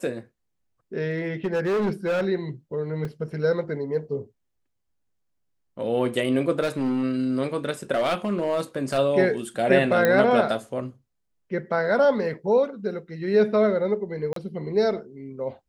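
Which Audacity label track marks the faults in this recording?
1.110000	2.260000	clipped -20.5 dBFS
3.050000	3.050000	dropout 2.4 ms
6.600000	7.040000	clipped -20 dBFS
7.940000	8.990000	clipped -18 dBFS
10.050000	10.050000	pop -8 dBFS
14.330000	14.360000	dropout 33 ms

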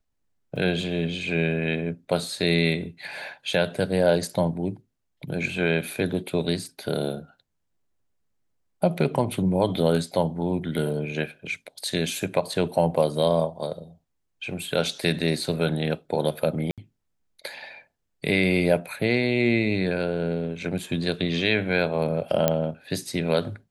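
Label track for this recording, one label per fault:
0.560000	0.560000	dropout 3.8 ms
16.710000	16.780000	dropout 67 ms
22.480000	22.480000	pop -6 dBFS

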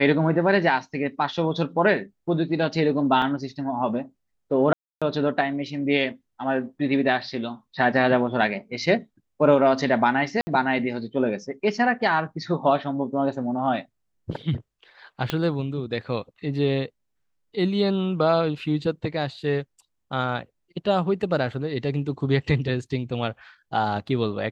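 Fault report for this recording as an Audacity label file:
3.220000	3.220000	dropout 2.4 ms
4.730000	5.020000	dropout 286 ms
10.410000	10.470000	dropout 60 ms
15.300000	15.300000	pop -10 dBFS

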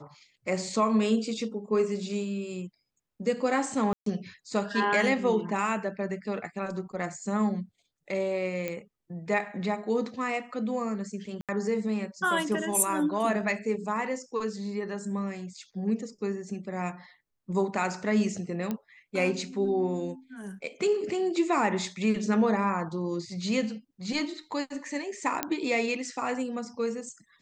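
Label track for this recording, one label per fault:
3.930000	4.060000	dropout 133 ms
8.680000	8.680000	pop -18 dBFS
11.410000	11.490000	dropout 77 ms
18.710000	18.710000	pop -18 dBFS
25.430000	25.430000	pop -10 dBFS

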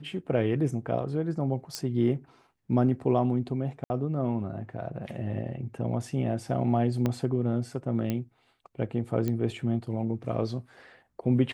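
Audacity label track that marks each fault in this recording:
1.750000	1.750000	pop -17 dBFS
3.840000	3.900000	dropout 60 ms
7.060000	7.060000	pop -15 dBFS
8.100000	8.100000	pop -16 dBFS
9.280000	9.280000	pop -17 dBFS

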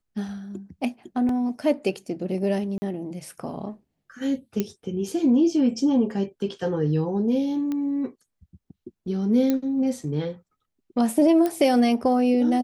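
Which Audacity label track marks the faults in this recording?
1.290000	1.290000	dropout 2.8 ms
2.780000	2.820000	dropout 40 ms
4.600000	4.600000	pop -11 dBFS
7.720000	7.720000	pop -18 dBFS
9.500000	9.500000	pop -11 dBFS
11.460000	11.460000	pop -13 dBFS

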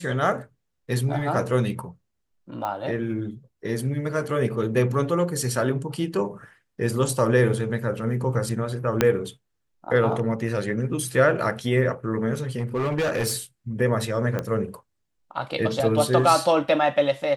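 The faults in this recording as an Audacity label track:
2.650000	2.650000	pop -17 dBFS
9.010000	9.010000	pop -4 dBFS
12.590000	13.360000	clipped -20.5 dBFS
14.390000	14.390000	pop -14 dBFS

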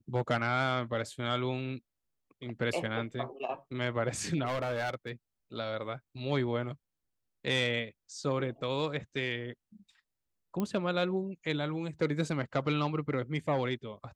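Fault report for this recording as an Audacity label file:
4.450000	5.100000	clipped -29 dBFS
10.600000	10.600000	pop -20 dBFS

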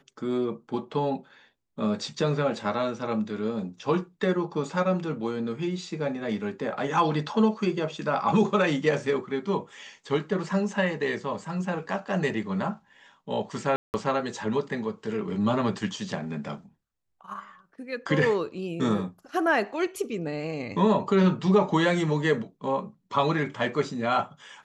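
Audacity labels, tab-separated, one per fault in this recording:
13.760000	13.940000	dropout 179 ms

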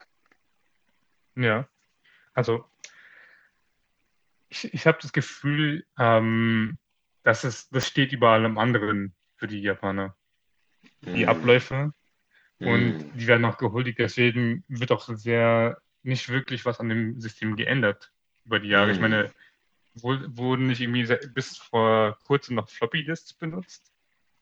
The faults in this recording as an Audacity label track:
7.830000	7.830000	pop -11 dBFS

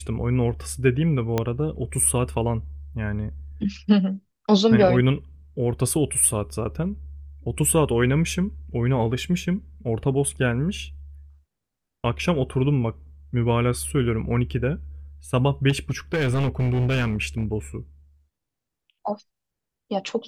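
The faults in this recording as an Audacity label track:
1.380000	1.380000	pop -9 dBFS
15.690000	17.450000	clipped -18.5 dBFS

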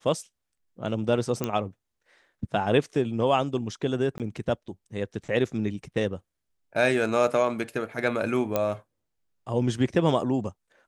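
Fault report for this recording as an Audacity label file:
1.440000	1.440000	pop -13 dBFS
4.180000	4.200000	dropout 18 ms
8.560000	8.560000	pop -11 dBFS

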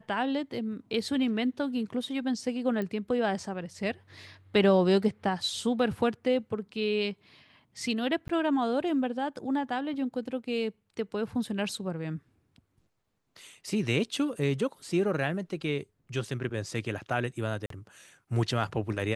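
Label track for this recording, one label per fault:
2.820000	2.820000	pop -22 dBFS
8.280000	8.290000	dropout 13 ms
17.660000	17.700000	dropout 43 ms

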